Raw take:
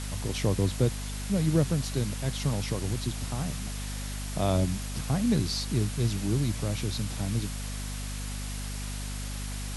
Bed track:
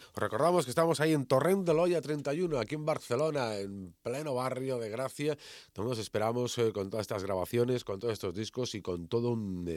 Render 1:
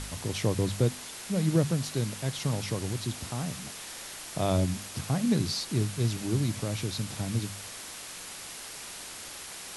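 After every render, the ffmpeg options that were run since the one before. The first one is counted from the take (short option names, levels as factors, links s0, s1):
-af "bandreject=f=50:t=h:w=4,bandreject=f=100:t=h:w=4,bandreject=f=150:t=h:w=4,bandreject=f=200:t=h:w=4,bandreject=f=250:t=h:w=4"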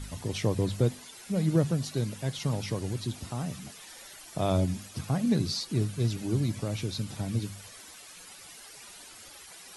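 -af "afftdn=nr=12:nf=-43"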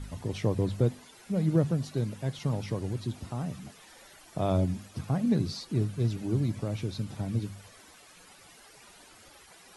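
-af "highshelf=f=2400:g=-9"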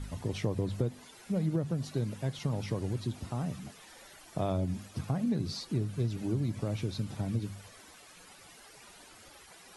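-af "acompressor=threshold=0.0447:ratio=5"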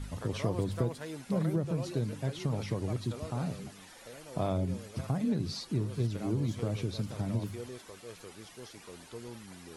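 -filter_complex "[1:a]volume=0.2[s0];[0:a][s0]amix=inputs=2:normalize=0"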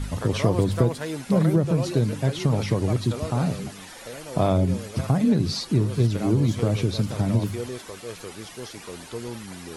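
-af "volume=3.35"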